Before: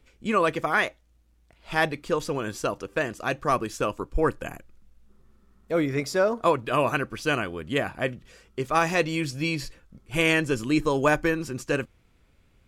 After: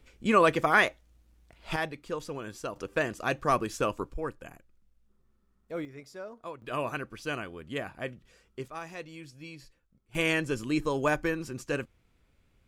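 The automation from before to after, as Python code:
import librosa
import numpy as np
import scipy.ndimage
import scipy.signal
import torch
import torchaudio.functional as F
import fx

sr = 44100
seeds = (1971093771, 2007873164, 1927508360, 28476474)

y = fx.gain(x, sr, db=fx.steps((0.0, 1.0), (1.76, -9.0), (2.76, -2.0), (4.14, -11.5), (5.85, -19.5), (6.62, -9.0), (8.68, -18.0), (10.15, -5.5)))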